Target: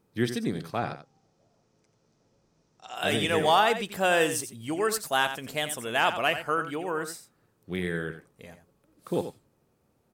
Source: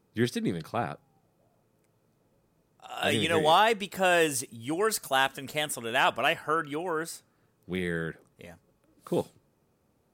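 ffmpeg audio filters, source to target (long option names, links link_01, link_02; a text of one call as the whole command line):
ffmpeg -i in.wav -filter_complex "[0:a]asettb=1/sr,asplit=3[link_01][link_02][link_03];[link_01]atrim=end=0.744[link_04];[link_02]atrim=start=0.74:end=2.95,asetpts=PTS-STARTPTS,afade=type=in:duration=0.004:curve=qsin,afade=type=out:start_time=2.206:duration=0.004:curve=qsin,lowpass=frequency=5800:width_type=q:width=3.1[link_05];[link_03]atrim=start=2.946[link_06];[link_04][link_05]acrossfade=duration=0.004:curve1=hsin:curve2=qsin[link_07];[link_07][link_06]acrossfade=duration=0.004:curve1=qsin:curve2=hsin,asplit=2[link_08][link_09];[link_09]aecho=0:1:88:0.299[link_10];[link_08][link_10]amix=inputs=2:normalize=0" out.wav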